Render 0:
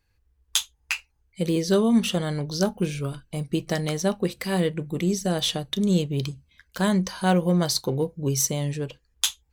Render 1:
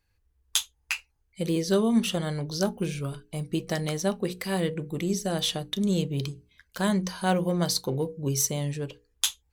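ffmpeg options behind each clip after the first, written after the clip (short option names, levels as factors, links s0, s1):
-af "equalizer=f=11000:t=o:w=0.51:g=2.5,bandreject=f=60:t=h:w=6,bandreject=f=120:t=h:w=6,bandreject=f=180:t=h:w=6,bandreject=f=240:t=h:w=6,bandreject=f=300:t=h:w=6,bandreject=f=360:t=h:w=6,bandreject=f=420:t=h:w=6,bandreject=f=480:t=h:w=6,volume=0.75"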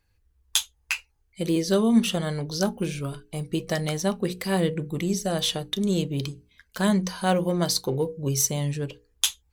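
-af "aphaser=in_gain=1:out_gain=1:delay=4.7:decay=0.21:speed=0.22:type=triangular,volume=1.26"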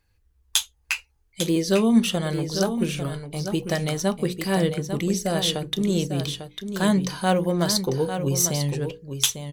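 -af "aecho=1:1:848:0.376,volume=1.19"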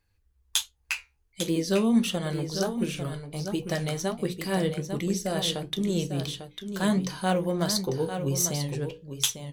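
-af "flanger=delay=9.3:depth=5.5:regen=-67:speed=1.4:shape=sinusoidal"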